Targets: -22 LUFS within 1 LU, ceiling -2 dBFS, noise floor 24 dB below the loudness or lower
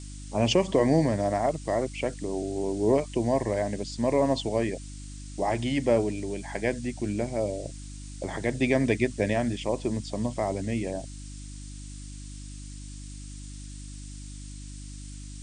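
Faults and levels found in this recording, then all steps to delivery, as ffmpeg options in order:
hum 50 Hz; highest harmonic 300 Hz; hum level -38 dBFS; noise floor -41 dBFS; noise floor target -52 dBFS; loudness -27.5 LUFS; peak level -9.5 dBFS; loudness target -22.0 LUFS
-> -af "bandreject=f=50:t=h:w=4,bandreject=f=100:t=h:w=4,bandreject=f=150:t=h:w=4,bandreject=f=200:t=h:w=4,bandreject=f=250:t=h:w=4,bandreject=f=300:t=h:w=4"
-af "afftdn=nr=11:nf=-41"
-af "volume=1.88"

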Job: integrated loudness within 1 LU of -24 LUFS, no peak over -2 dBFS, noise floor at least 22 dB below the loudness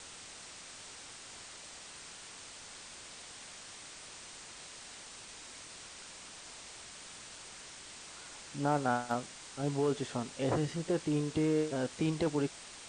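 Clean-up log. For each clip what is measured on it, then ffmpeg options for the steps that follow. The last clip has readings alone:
noise floor -50 dBFS; noise floor target -60 dBFS; loudness -38.0 LUFS; peak level -17.0 dBFS; loudness target -24.0 LUFS
-> -af "afftdn=nr=10:nf=-50"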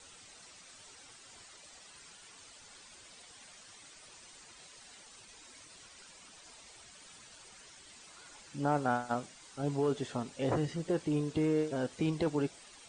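noise floor -56 dBFS; loudness -34.0 LUFS; peak level -17.0 dBFS; loudness target -24.0 LUFS
-> -af "volume=3.16"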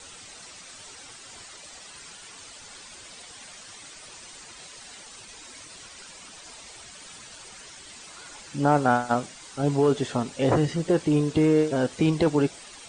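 loudness -24.0 LUFS; peak level -7.0 dBFS; noise floor -46 dBFS

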